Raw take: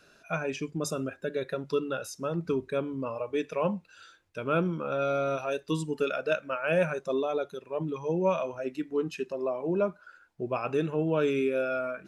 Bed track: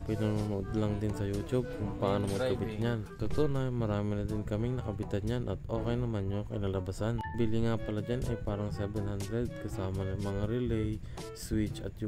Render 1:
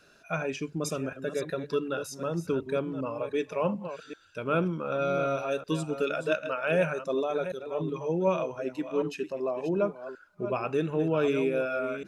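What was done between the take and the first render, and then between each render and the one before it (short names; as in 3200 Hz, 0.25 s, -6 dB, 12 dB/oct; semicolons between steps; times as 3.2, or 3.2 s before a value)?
reverse delay 0.376 s, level -10 dB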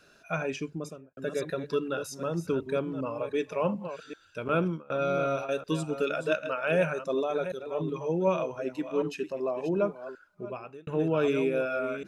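0.54–1.17 studio fade out; 4.48–5.49 gate with hold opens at -21 dBFS, closes at -24 dBFS; 10.03–10.87 fade out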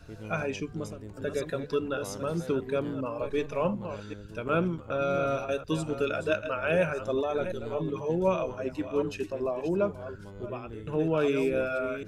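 add bed track -11 dB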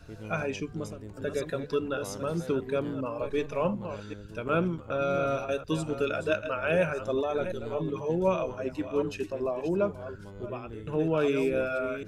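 nothing audible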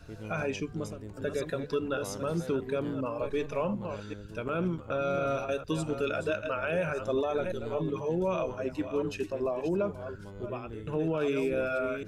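limiter -21 dBFS, peak gain reduction 8 dB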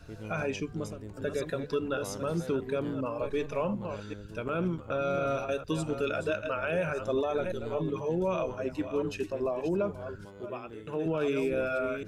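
10.25–11.06 HPF 280 Hz 6 dB/oct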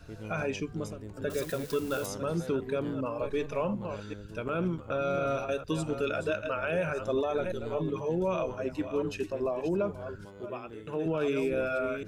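1.3–2.06 switching spikes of -32.5 dBFS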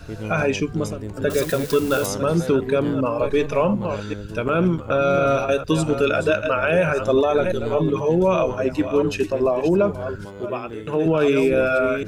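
gain +11.5 dB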